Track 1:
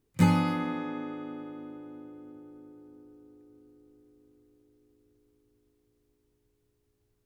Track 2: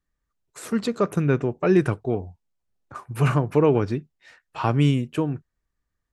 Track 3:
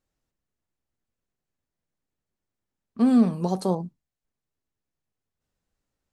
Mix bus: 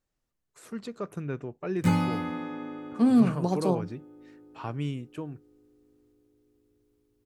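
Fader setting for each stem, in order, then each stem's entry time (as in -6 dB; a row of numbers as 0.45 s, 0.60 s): -1.5 dB, -13.0 dB, -2.0 dB; 1.65 s, 0.00 s, 0.00 s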